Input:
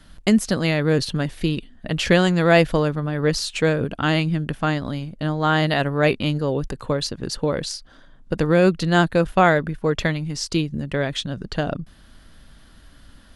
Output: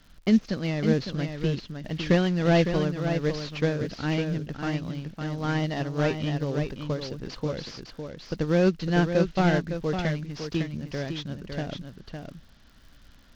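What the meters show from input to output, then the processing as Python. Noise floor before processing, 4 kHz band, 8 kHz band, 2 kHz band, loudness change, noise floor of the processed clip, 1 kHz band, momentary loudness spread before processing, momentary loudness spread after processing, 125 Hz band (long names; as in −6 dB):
−49 dBFS, −9.0 dB, −13.0 dB, −9.5 dB, −6.0 dB, −54 dBFS, −10.0 dB, 10 LU, 13 LU, −4.5 dB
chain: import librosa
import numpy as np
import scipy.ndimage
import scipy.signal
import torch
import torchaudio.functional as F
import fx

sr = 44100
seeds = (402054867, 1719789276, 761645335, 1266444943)

y = fx.cvsd(x, sr, bps=32000)
y = fx.dmg_crackle(y, sr, seeds[0], per_s=81.0, level_db=-38.0)
y = fx.dynamic_eq(y, sr, hz=1000.0, q=0.7, threshold_db=-34.0, ratio=4.0, max_db=-5)
y = y + 10.0 ** (-5.5 / 20.0) * np.pad(y, (int(557 * sr / 1000.0), 0))[:len(y)]
y = fx.upward_expand(y, sr, threshold_db=-24.0, expansion=1.5)
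y = F.gain(torch.from_numpy(y), -2.0).numpy()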